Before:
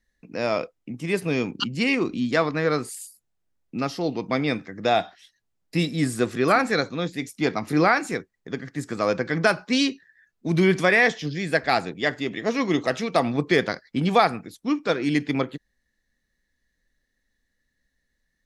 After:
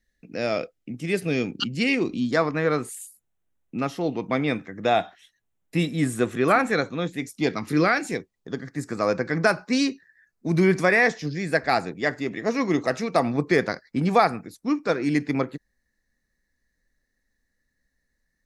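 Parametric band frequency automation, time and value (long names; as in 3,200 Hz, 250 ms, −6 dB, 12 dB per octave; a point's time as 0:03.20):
parametric band −12 dB 0.41 octaves
0:01.94 1,000 Hz
0:02.59 4,800 Hz
0:07.19 4,800 Hz
0:07.62 610 Hz
0:08.76 3,200 Hz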